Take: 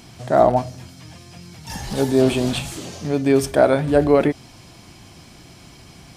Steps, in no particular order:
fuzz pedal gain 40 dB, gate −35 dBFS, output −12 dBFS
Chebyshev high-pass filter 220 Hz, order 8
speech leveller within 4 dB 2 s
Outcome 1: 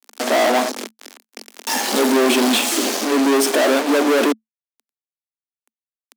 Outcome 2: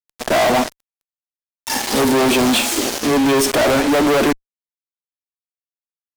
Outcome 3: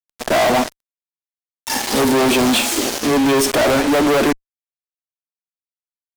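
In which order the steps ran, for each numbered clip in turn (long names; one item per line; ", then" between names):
speech leveller, then fuzz pedal, then Chebyshev high-pass filter
Chebyshev high-pass filter, then speech leveller, then fuzz pedal
speech leveller, then Chebyshev high-pass filter, then fuzz pedal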